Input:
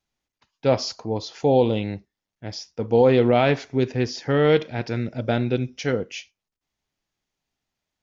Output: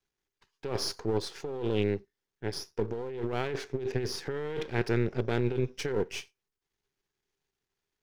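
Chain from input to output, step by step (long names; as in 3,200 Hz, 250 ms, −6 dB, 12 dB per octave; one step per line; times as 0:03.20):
gain on one half-wave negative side −12 dB
thirty-one-band graphic EQ 250 Hz −5 dB, 400 Hz +12 dB, 630 Hz −7 dB, 1,600 Hz +4 dB
compressor whose output falls as the input rises −25 dBFS, ratio −1
level −5.5 dB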